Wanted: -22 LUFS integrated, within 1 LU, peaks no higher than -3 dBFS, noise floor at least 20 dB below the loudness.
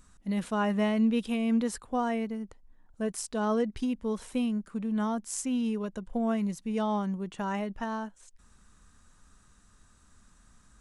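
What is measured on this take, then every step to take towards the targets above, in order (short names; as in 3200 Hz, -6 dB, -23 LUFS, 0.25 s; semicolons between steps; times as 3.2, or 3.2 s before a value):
loudness -31.0 LUFS; peak -17.5 dBFS; loudness target -22.0 LUFS
-> gain +9 dB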